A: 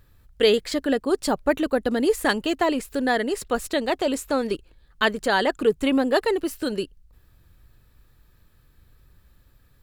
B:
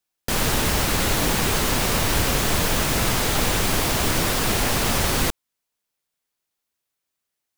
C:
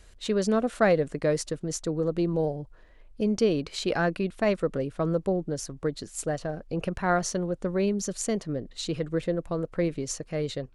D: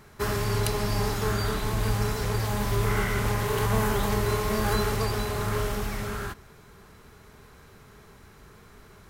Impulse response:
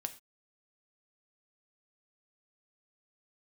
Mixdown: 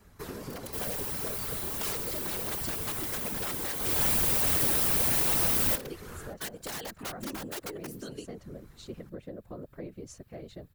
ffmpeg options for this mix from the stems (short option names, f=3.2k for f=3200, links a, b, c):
-filter_complex "[0:a]adelay=1400,volume=-3.5dB[a];[1:a]aexciter=amount=1.4:drive=8.1:freq=9k,adelay=450,volume=-5.5dB,afade=t=in:st=3.78:d=0.23:silence=0.334965[b];[2:a]highshelf=f=3k:g=-10.5,volume=-4dB[c];[3:a]lowshelf=f=140:g=9.5,acrossover=split=240[d][e];[d]acompressor=threshold=-31dB:ratio=8[f];[f][e]amix=inputs=2:normalize=0,volume=-4.5dB[g];[a][c][g]amix=inputs=3:normalize=0,aeval=exprs='(mod(7.08*val(0)+1,2)-1)/7.08':c=same,acompressor=threshold=-32dB:ratio=4,volume=0dB[h];[b][h]amix=inputs=2:normalize=0,highshelf=f=8.6k:g=8,afftfilt=real='hypot(re,im)*cos(2*PI*random(0))':imag='hypot(re,im)*sin(2*PI*random(1))':win_size=512:overlap=0.75"